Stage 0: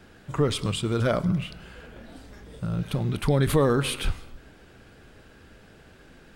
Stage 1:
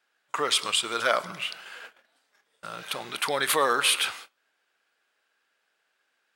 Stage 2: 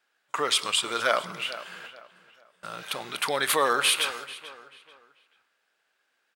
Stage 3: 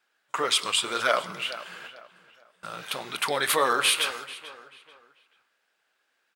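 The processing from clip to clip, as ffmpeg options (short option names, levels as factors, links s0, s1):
-af "highpass=970,agate=range=0.0631:threshold=0.00316:ratio=16:detection=peak,volume=2.51"
-filter_complex "[0:a]asplit=2[s0][s1];[s1]adelay=439,lowpass=f=3600:p=1,volume=0.178,asplit=2[s2][s3];[s3]adelay=439,lowpass=f=3600:p=1,volume=0.33,asplit=2[s4][s5];[s5]adelay=439,lowpass=f=3600:p=1,volume=0.33[s6];[s0][s2][s4][s6]amix=inputs=4:normalize=0"
-af "flanger=delay=0.8:depth=8.7:regen=-58:speed=1.9:shape=sinusoidal,volume=1.68"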